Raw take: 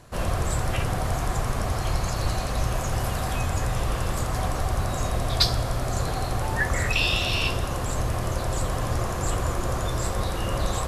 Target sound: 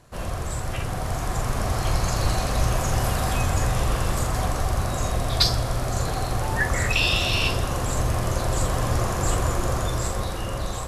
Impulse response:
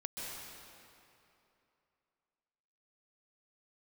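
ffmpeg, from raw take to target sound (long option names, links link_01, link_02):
-filter_complex "[0:a]dynaudnorm=framelen=310:gausssize=9:maxgain=7.5dB,asplit=2[link_01][link_02];[link_02]highshelf=frequency=4000:width_type=q:width=1.5:gain=10.5[link_03];[1:a]atrim=start_sample=2205,atrim=end_sample=4410,adelay=43[link_04];[link_03][link_04]afir=irnorm=-1:irlink=0,volume=-12dB[link_05];[link_01][link_05]amix=inputs=2:normalize=0,volume=-4dB"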